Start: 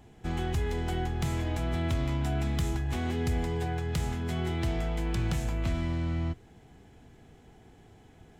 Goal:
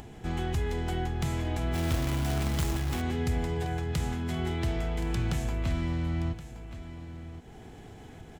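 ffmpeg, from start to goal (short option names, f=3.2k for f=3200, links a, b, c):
-filter_complex "[0:a]aecho=1:1:1073:0.2,acompressor=mode=upward:threshold=-37dB:ratio=2.5,asplit=3[a][b][c];[a]afade=t=out:st=1.73:d=0.02[d];[b]acrusher=bits=2:mode=log:mix=0:aa=0.000001,afade=t=in:st=1.73:d=0.02,afade=t=out:st=3:d=0.02[e];[c]afade=t=in:st=3:d=0.02[f];[d][e][f]amix=inputs=3:normalize=0"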